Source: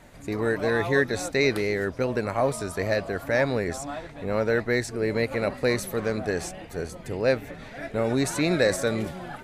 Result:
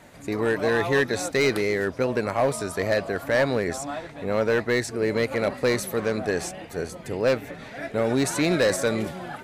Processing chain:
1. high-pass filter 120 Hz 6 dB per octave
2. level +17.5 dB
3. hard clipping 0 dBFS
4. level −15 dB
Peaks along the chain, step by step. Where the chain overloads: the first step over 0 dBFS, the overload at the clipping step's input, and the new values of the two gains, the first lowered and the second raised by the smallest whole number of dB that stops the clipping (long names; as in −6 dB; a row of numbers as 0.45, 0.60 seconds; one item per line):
−8.5, +9.0, 0.0, −15.0 dBFS
step 2, 9.0 dB
step 2 +8.5 dB, step 4 −6 dB